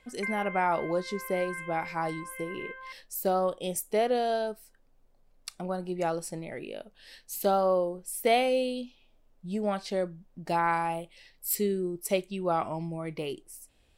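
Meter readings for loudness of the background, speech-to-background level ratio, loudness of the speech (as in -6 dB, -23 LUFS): -40.0 LUFS, 9.5 dB, -30.5 LUFS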